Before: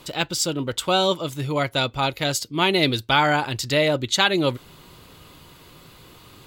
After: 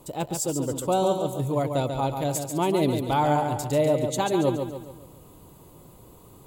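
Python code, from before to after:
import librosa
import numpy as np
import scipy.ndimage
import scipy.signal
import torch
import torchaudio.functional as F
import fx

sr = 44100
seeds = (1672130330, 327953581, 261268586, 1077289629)

p1 = fx.band_shelf(x, sr, hz=2700.0, db=-15.0, octaves=2.4)
p2 = p1 + fx.echo_feedback(p1, sr, ms=140, feedback_pct=45, wet_db=-6.5, dry=0)
y = p2 * librosa.db_to_amplitude(-1.5)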